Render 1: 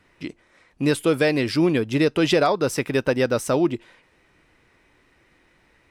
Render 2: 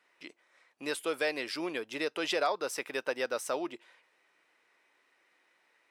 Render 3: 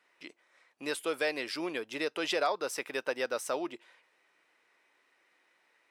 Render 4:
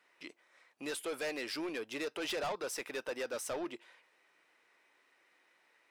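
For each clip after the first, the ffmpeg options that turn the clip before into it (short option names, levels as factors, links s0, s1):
-af "highpass=560,volume=0.398"
-af anull
-af "asoftclip=type=tanh:threshold=0.0224"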